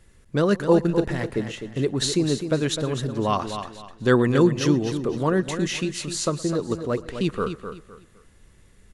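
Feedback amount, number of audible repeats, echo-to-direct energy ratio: no regular repeats, 5, -8.5 dB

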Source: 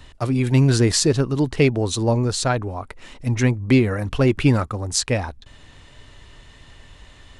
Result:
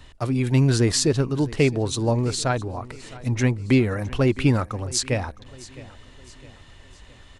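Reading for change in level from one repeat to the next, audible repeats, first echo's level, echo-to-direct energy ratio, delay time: -7.0 dB, 3, -19.5 dB, -18.5 dB, 661 ms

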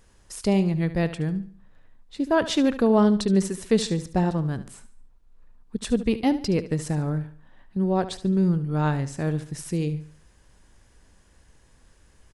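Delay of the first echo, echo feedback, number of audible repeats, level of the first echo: 72 ms, 37%, 3, -14.0 dB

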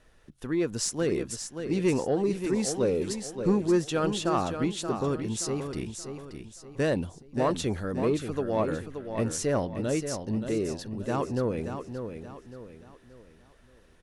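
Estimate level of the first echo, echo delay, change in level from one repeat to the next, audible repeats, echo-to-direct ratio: -8.0 dB, 577 ms, -8.5 dB, 4, -7.5 dB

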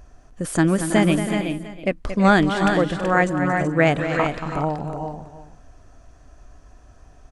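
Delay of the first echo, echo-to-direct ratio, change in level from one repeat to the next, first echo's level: 229 ms, -3.5 dB, no regular repeats, -10.0 dB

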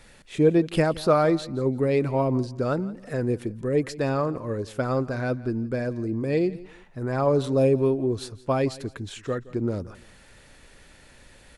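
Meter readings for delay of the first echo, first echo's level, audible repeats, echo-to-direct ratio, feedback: 170 ms, -19.5 dB, 2, -19.0 dB, 27%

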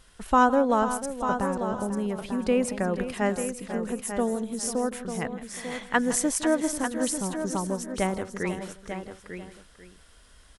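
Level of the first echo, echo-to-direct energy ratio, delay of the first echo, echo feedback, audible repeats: -15.5 dB, -6.5 dB, 162 ms, no regular repeats, 5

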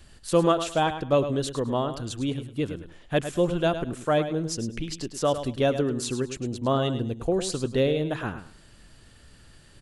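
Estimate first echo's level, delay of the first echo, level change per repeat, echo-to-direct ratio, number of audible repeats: -10.5 dB, 105 ms, -13.0 dB, -10.5 dB, 2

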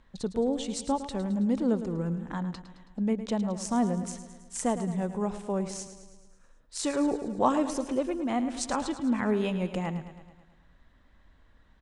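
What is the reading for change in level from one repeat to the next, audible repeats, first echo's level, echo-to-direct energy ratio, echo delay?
-4.5 dB, 6, -12.0 dB, -10.0 dB, 108 ms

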